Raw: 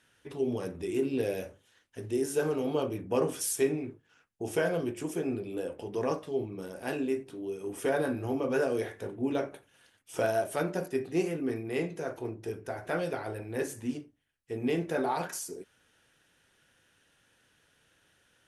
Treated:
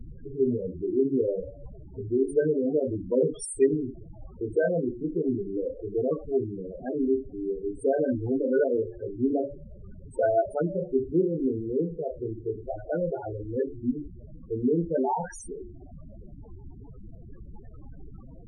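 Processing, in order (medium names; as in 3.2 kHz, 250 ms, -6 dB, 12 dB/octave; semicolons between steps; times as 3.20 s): de-hum 71.35 Hz, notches 31; added noise pink -45 dBFS; loudest bins only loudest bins 8; trim +6 dB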